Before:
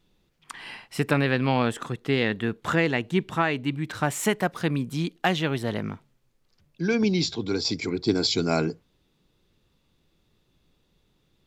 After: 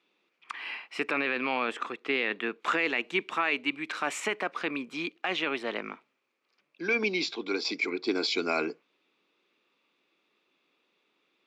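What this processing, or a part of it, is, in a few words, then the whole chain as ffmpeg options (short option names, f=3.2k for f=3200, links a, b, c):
laptop speaker: -filter_complex "[0:a]highpass=f=280:w=0.5412,highpass=f=280:w=1.3066,equalizer=f=1.2k:t=o:w=0.53:g=6.5,equalizer=f=2.4k:t=o:w=0.45:g=11.5,alimiter=limit=-13.5dB:level=0:latency=1:release=16,asettb=1/sr,asplit=3[a][b][c];[a]atrim=end=2.604[d];[b]atrim=start=2.6:end=4.2,asetpts=PTS-STARTPTS,afade=t=in:d=0.004:c=qsin,afade=t=out:st=1.596:d=0.004:c=qsin,aemphasis=mode=production:type=cd[e];[c]atrim=start=4.196[f];[d][e]acrossfade=d=0.004:c1=hsin:c2=qsin[g];[g][f]acrossfade=d=0.004:c1=qsin:c2=hsin,lowpass=5.1k,volume=-3.5dB"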